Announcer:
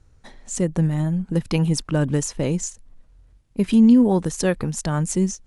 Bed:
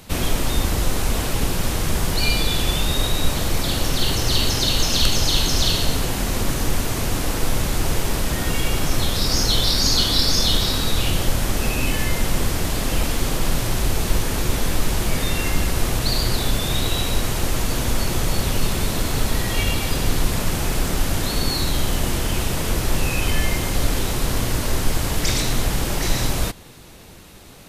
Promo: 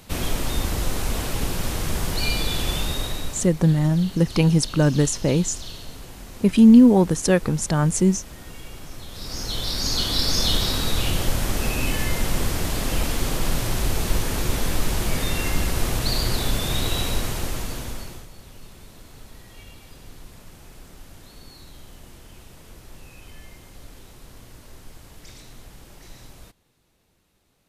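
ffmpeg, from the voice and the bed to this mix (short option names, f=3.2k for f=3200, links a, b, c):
-filter_complex "[0:a]adelay=2850,volume=2.5dB[a];[1:a]volume=11.5dB,afade=t=out:st=2.79:d=0.73:silence=0.199526,afade=t=in:st=9.07:d=1.41:silence=0.16788,afade=t=out:st=17.04:d=1.24:silence=0.0891251[b];[a][b]amix=inputs=2:normalize=0"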